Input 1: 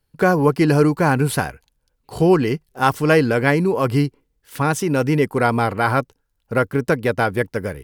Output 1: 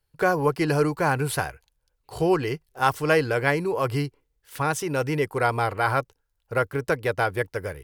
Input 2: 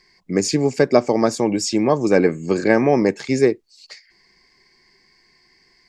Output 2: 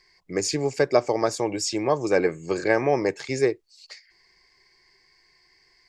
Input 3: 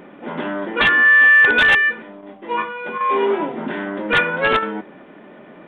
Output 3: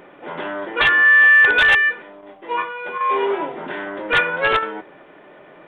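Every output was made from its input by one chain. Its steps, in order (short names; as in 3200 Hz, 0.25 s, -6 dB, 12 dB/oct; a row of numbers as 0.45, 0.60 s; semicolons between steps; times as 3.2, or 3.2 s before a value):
bell 220 Hz -14.5 dB 0.7 oct; normalise peaks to -6 dBFS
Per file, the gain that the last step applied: -4.0, -3.5, 0.0 dB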